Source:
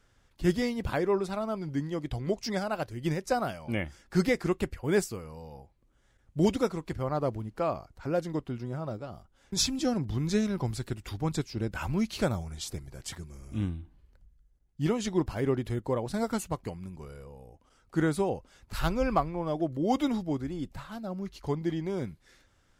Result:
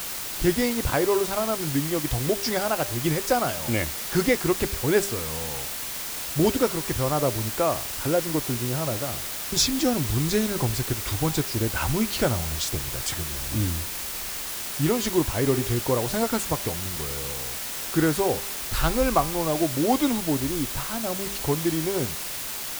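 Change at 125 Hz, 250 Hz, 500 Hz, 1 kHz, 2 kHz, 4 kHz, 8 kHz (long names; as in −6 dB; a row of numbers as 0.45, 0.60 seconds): +5.0, +4.5, +5.5, +6.0, +8.0, +10.5, +13.5 decibels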